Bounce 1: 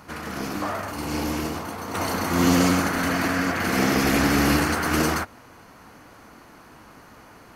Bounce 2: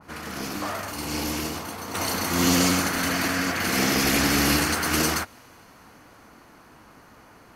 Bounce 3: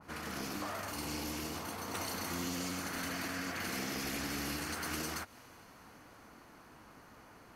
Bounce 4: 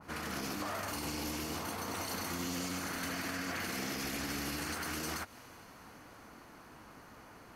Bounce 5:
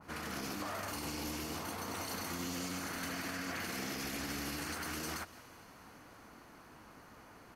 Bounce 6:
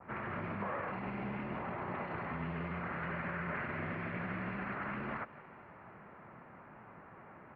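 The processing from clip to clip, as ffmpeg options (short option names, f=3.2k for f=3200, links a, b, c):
-af "adynamicequalizer=threshold=0.00891:dfrequency=2200:dqfactor=0.7:tfrequency=2200:tqfactor=0.7:attack=5:release=100:ratio=0.375:range=4:mode=boostabove:tftype=highshelf,volume=-3dB"
-af "acompressor=threshold=-30dB:ratio=6,volume=-6dB"
-af "alimiter=level_in=7dB:limit=-24dB:level=0:latency=1:release=47,volume=-7dB,volume=2.5dB"
-af "aecho=1:1:173:0.112,volume=-2dB"
-af "highpass=f=200:t=q:w=0.5412,highpass=f=200:t=q:w=1.307,lowpass=f=2.4k:t=q:w=0.5176,lowpass=f=2.4k:t=q:w=0.7071,lowpass=f=2.4k:t=q:w=1.932,afreqshift=-100,volume=3dB"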